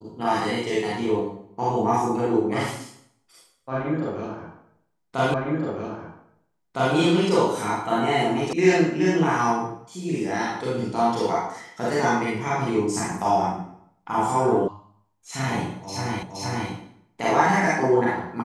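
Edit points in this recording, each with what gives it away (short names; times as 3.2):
5.34 repeat of the last 1.61 s
8.53 sound cut off
14.68 sound cut off
16.23 repeat of the last 0.47 s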